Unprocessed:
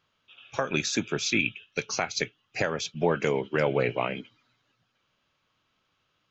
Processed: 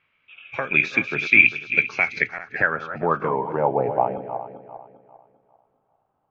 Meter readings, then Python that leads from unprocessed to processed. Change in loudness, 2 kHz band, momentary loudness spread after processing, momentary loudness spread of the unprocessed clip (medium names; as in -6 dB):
+8.0 dB, +12.0 dB, 17 LU, 8 LU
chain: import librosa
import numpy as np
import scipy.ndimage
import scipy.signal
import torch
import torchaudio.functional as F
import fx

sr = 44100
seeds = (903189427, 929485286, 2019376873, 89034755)

y = fx.reverse_delay_fb(x, sr, ms=199, feedback_pct=56, wet_db=-9.5)
y = fx.filter_sweep_lowpass(y, sr, from_hz=2300.0, to_hz=810.0, start_s=2.01, end_s=3.75, q=7.1)
y = y * 10.0 ** (-1.0 / 20.0)